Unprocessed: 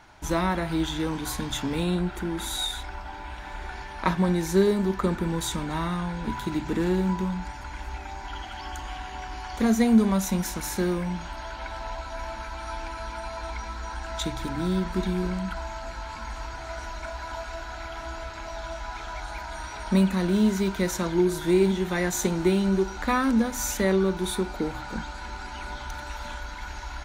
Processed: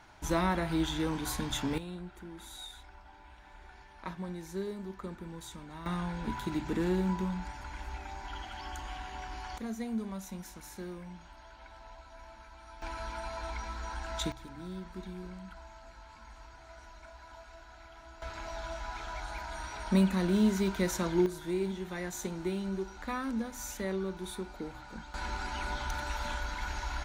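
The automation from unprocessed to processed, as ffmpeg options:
-af "asetnsamples=n=441:p=0,asendcmd='1.78 volume volume -16.5dB;5.86 volume volume -5.5dB;9.58 volume volume -16.5dB;12.82 volume volume -4.5dB;14.32 volume volume -16dB;18.22 volume volume -4.5dB;21.26 volume volume -12dB;25.14 volume volume 0dB',volume=-4dB"

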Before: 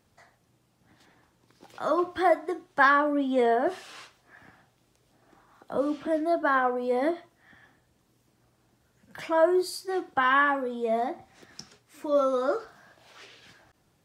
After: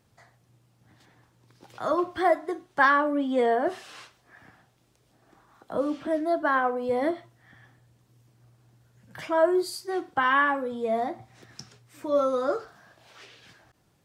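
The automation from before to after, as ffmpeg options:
-af "asetnsamples=n=441:p=0,asendcmd='1.93 equalizer g 3;6.89 equalizer g 12.5;9.27 equalizer g 5.5;10.72 equalizer g 13;12.59 equalizer g 4',equalizer=f=120:t=o:w=0.39:g=9"

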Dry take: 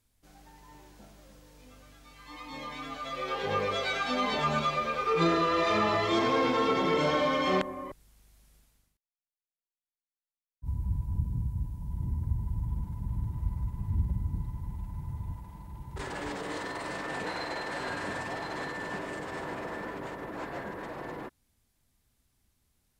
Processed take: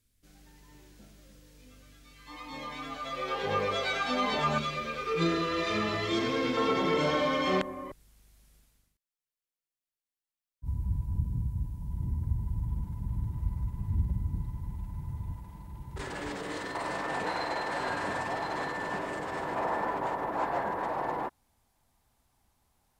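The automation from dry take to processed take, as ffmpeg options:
-af "asetnsamples=n=441:p=0,asendcmd='2.27 equalizer g 0.5;4.58 equalizer g -11;6.57 equalizer g -2;16.75 equalizer g 5.5;19.56 equalizer g 13',equalizer=f=850:t=o:w=1.1:g=-11"

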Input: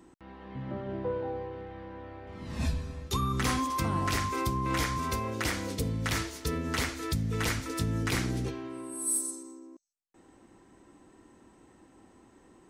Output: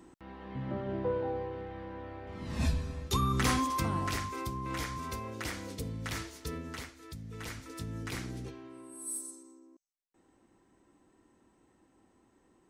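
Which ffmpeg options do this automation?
-af "volume=8.5dB,afade=t=out:st=3.52:d=0.8:silence=0.421697,afade=t=out:st=6.56:d=0.36:silence=0.316228,afade=t=in:st=6.92:d=1.05:silence=0.398107"

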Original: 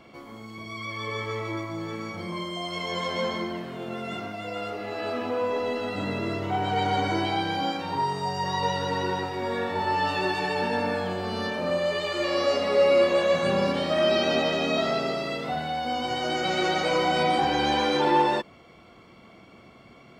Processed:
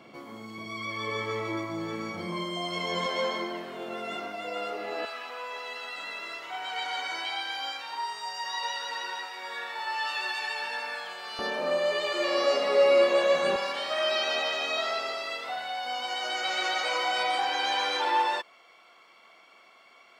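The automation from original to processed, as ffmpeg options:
-af "asetnsamples=n=441:p=0,asendcmd='3.06 highpass f 350;5.05 highpass f 1300;11.39 highpass f 380;13.56 highpass f 870',highpass=140"

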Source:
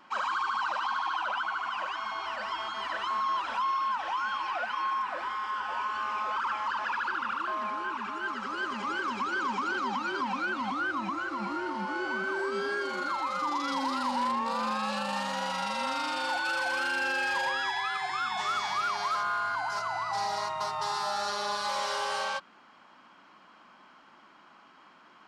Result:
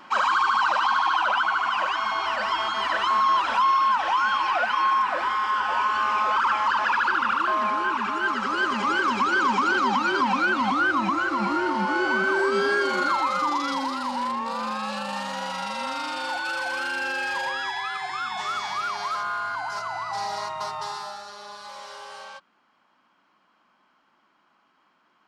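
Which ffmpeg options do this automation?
-af "volume=9dB,afade=t=out:st=13.04:d=0.92:silence=0.421697,afade=t=out:st=20.71:d=0.53:silence=0.298538"

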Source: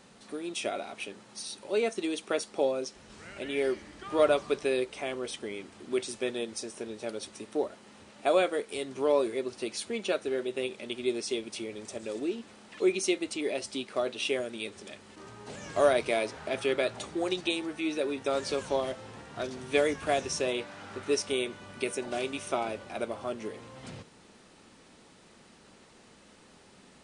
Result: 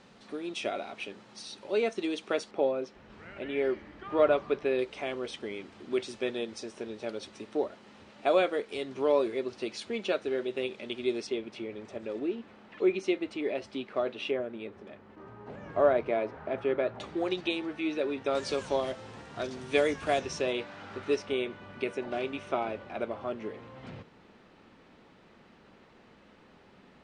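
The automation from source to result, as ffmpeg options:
-af "asetnsamples=n=441:p=0,asendcmd='2.51 lowpass f 2500;4.79 lowpass f 4600;11.27 lowpass f 2500;14.31 lowpass f 1500;17 lowpass f 3500;18.35 lowpass f 7100;20.19 lowpass f 4500;21.16 lowpass f 2800',lowpass=4.8k"

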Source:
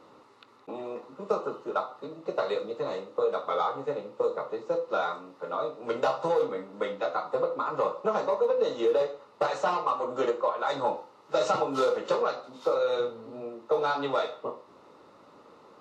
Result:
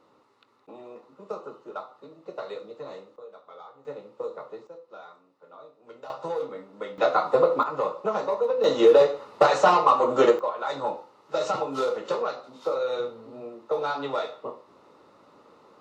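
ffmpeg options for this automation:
-af "asetnsamples=n=441:p=0,asendcmd='3.16 volume volume -18dB;3.85 volume volume -6dB;4.67 volume volume -16.5dB;6.1 volume volume -4.5dB;6.98 volume volume 8dB;7.63 volume volume 0.5dB;8.64 volume volume 9dB;10.39 volume volume -1dB',volume=-7dB"

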